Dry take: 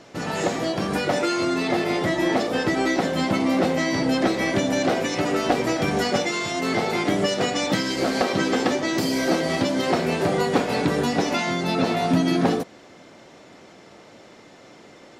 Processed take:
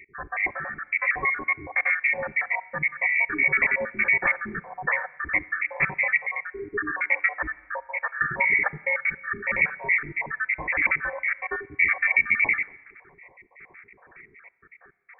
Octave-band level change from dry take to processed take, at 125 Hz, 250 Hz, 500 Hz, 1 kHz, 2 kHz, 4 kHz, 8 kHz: −15.0 dB, −21.0 dB, −14.0 dB, −7.5 dB, +7.0 dB, below −40 dB, below −40 dB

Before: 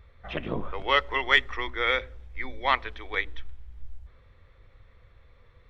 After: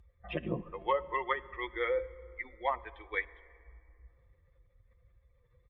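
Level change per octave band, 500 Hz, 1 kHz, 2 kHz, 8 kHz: −2.0 dB, −6.5 dB, −12.5 dB, can't be measured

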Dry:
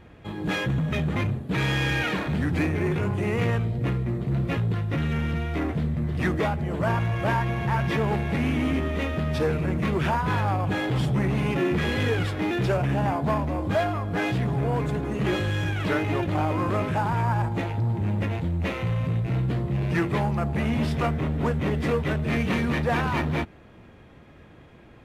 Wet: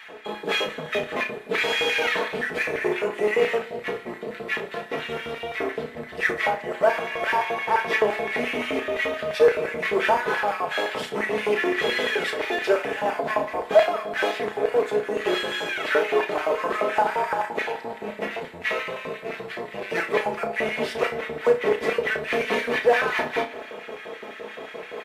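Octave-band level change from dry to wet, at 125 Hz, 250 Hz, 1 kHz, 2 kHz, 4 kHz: −22.0, −8.0, +3.0, +6.0, +5.5 decibels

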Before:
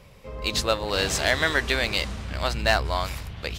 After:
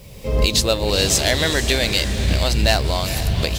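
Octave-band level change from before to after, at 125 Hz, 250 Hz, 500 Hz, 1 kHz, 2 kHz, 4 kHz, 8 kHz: +11.0, +9.0, +6.0, +1.0, +1.5, +7.5, +10.5 decibels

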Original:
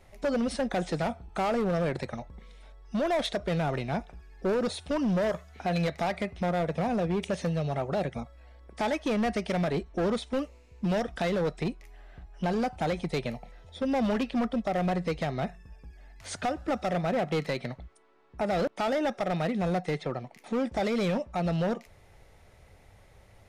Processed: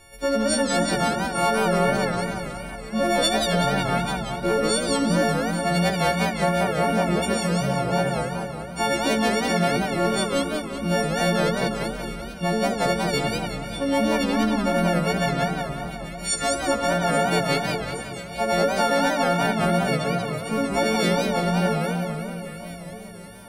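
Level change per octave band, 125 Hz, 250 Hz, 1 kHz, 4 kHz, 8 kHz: +6.5, +6.0, +9.0, +13.0, +17.5 decibels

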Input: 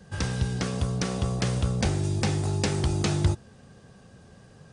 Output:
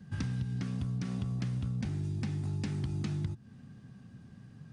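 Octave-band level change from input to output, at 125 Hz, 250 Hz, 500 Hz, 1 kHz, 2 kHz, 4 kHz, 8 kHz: −6.5, −6.5, −17.5, −17.5, −13.5, −16.5, −19.5 decibels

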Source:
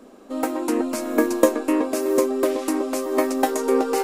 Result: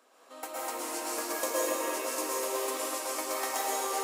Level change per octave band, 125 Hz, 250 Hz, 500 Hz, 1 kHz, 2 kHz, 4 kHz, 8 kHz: can't be measured, −20.5 dB, −13.0 dB, −6.0 dB, −5.0 dB, −1.0 dB, 0.0 dB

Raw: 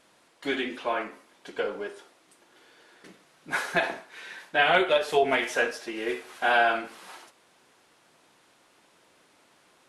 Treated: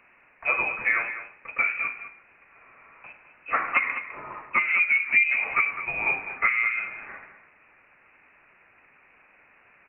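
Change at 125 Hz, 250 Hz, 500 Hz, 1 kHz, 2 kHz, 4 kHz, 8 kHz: can't be measured, −12.5 dB, −15.0 dB, −3.0 dB, +5.5 dB, below −15 dB, below −35 dB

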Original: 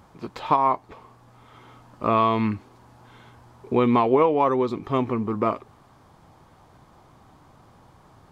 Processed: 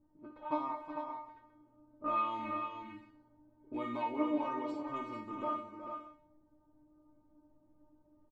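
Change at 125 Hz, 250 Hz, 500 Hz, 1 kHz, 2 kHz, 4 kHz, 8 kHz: −26.0 dB, −14.0 dB, −18.5 dB, −13.5 dB, −12.0 dB, −15.0 dB, can't be measured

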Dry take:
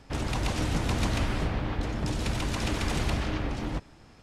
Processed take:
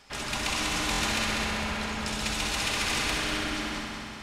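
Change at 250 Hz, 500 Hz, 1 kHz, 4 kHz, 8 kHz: −2.5, −1.5, +3.0, +8.0, +8.5 decibels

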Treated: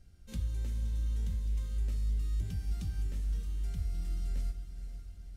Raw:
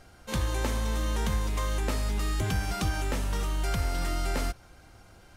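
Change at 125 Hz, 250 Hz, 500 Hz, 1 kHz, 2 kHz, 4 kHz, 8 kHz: −4.5, −13.0, −22.5, −28.5, −23.5, −18.5, −17.0 decibels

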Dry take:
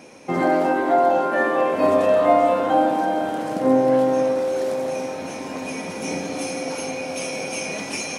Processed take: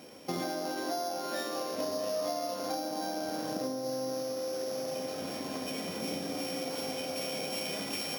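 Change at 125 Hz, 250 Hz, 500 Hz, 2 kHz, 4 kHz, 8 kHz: −11.0, −13.5, −15.0, −14.5, −1.5, −7.0 decibels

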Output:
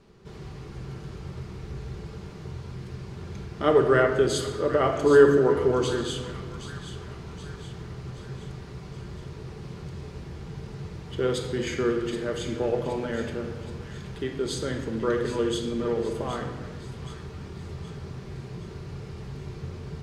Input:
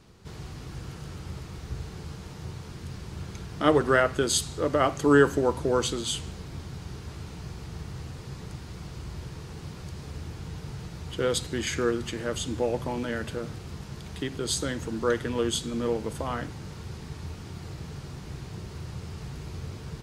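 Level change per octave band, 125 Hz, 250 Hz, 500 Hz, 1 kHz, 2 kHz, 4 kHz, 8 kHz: +1.0, +1.0, +4.0, −0.5, −1.0, −3.5, −7.0 decibels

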